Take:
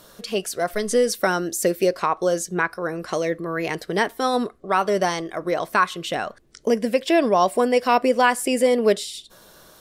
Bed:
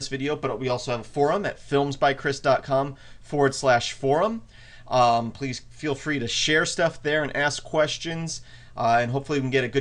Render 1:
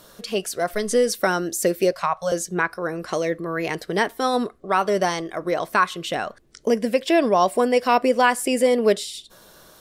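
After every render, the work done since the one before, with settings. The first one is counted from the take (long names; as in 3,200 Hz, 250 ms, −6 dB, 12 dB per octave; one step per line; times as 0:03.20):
0:01.92–0:02.32: Chebyshev band-stop filter 180–570 Hz, order 3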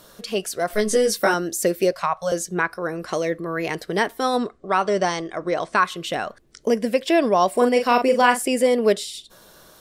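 0:00.68–0:01.34: double-tracking delay 19 ms −2 dB
0:04.38–0:05.85: Butterworth low-pass 8,800 Hz 48 dB per octave
0:07.53–0:08.42: double-tracking delay 41 ms −6.5 dB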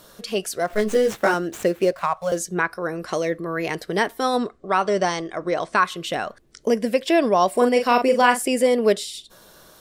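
0:00.64–0:02.37: running median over 9 samples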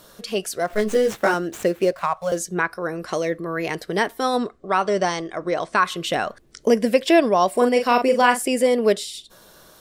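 0:05.86–0:07.20: clip gain +3 dB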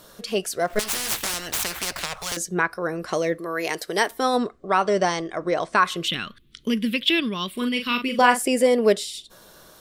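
0:00.79–0:02.37: every bin compressed towards the loudest bin 10 to 1
0:03.38–0:04.11: bass and treble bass −12 dB, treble +8 dB
0:06.08–0:08.19: drawn EQ curve 220 Hz 0 dB, 360 Hz −8 dB, 720 Hz −26 dB, 1,200 Hz −5 dB, 1,700 Hz −6 dB, 3,400 Hz +10 dB, 5,200 Hz −8 dB, 7,600 Hz −11 dB, 12,000 Hz −1 dB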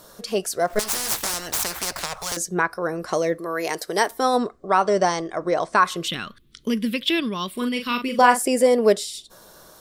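drawn EQ curve 270 Hz 0 dB, 910 Hz +3 dB, 2,900 Hz −4 dB, 5,200 Hz +2 dB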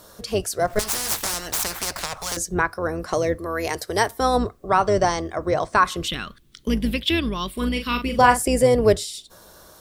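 sub-octave generator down 2 octaves, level −3 dB
bit-depth reduction 12 bits, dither triangular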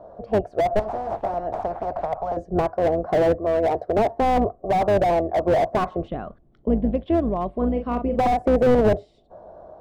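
low-pass with resonance 690 Hz, resonance Q 5.9
slew-rate limiting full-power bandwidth 90 Hz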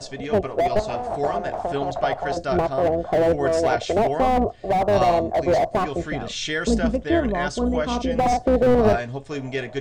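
mix in bed −5 dB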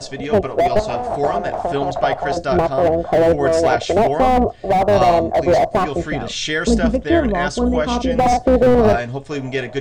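level +5 dB
brickwall limiter −3 dBFS, peak gain reduction 2.5 dB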